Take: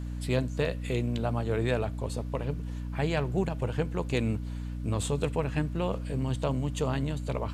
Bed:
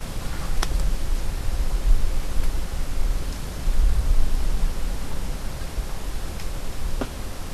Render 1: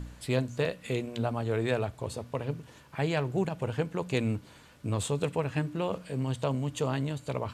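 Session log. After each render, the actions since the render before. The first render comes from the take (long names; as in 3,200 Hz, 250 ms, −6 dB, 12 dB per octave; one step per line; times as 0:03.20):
hum removal 60 Hz, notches 5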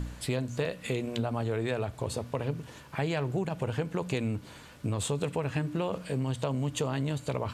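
in parallel at −2 dB: brickwall limiter −25 dBFS, peak gain reduction 10 dB
on the sum: downward compressor 4 to 1, threshold −27 dBFS, peak gain reduction 7 dB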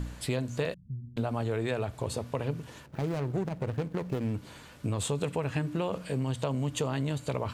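0:00.74–0:01.17: inverse Chebyshev low-pass filter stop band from 690 Hz, stop band 70 dB
0:02.86–0:04.34: running median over 41 samples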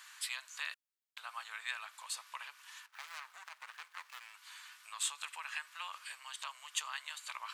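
Butterworth high-pass 1,100 Hz 36 dB per octave
notch filter 1,400 Hz, Q 23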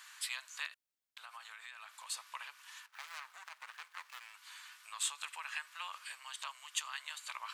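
0:00.66–0:02.07: downward compressor, threshold −46 dBFS
0:06.51–0:06.98: high-pass filter 650 Hz → 990 Hz 6 dB per octave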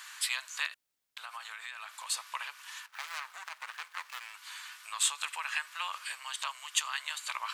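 level +7.5 dB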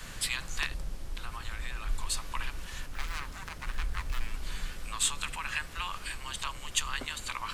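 mix in bed −14.5 dB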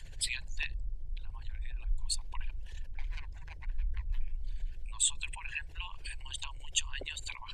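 spectral envelope exaggerated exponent 2
phaser with its sweep stopped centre 520 Hz, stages 4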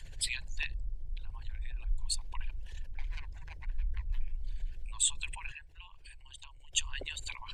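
0:05.52–0:06.73: clip gain −10.5 dB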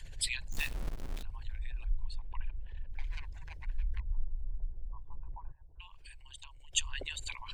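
0:00.52–0:01.23: log-companded quantiser 4 bits
0:01.89–0:02.90: high-frequency loss of the air 460 metres
0:04.00–0:05.80: Butterworth low-pass 1,000 Hz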